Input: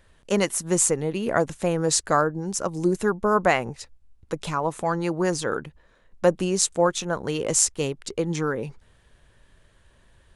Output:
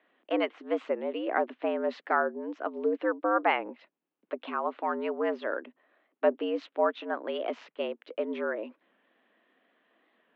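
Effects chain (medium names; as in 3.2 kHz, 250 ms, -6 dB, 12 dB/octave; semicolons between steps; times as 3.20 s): mistuned SSB +97 Hz 160–3100 Hz; warped record 45 rpm, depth 100 cents; trim -5.5 dB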